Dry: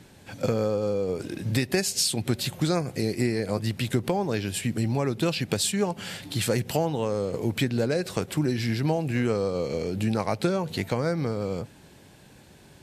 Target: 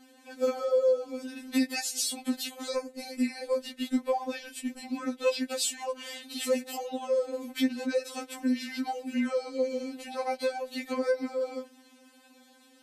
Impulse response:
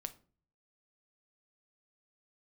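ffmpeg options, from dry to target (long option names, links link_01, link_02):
-filter_complex "[0:a]highpass=88,asettb=1/sr,asplit=3[link_01][link_02][link_03];[link_01]atrim=end=2.764[link_04];[link_02]atrim=start=2.76:end=5.34,asetpts=PTS-STARTPTS,afade=type=in:duration=0.004:curve=qsin,afade=type=out:start_time=2.576:duration=0.004:curve=qsin,agate=range=-12dB:threshold=-29dB:ratio=16:detection=peak[link_05];[link_03]atrim=start=5.336[link_06];[link_04][link_05]acrossfade=duration=0.004:curve1=hsin:curve2=qsin[link_07];[link_07][link_06]acrossfade=duration=0.004:curve1=qsin:curve2=hsin,afftfilt=real='re*3.46*eq(mod(b,12),0)':imag='im*3.46*eq(mod(b,12),0)':win_size=2048:overlap=0.75,volume=-2dB"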